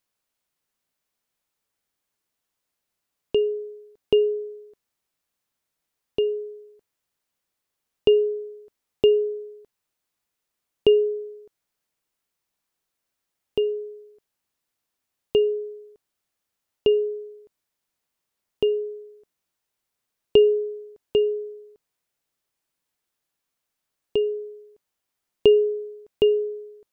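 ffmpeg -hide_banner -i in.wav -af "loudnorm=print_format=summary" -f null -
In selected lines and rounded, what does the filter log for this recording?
Input Integrated:    -23.4 LUFS
Input True Peak:      -5.8 dBTP
Input LRA:             8.3 LU
Input Threshold:     -35.1 LUFS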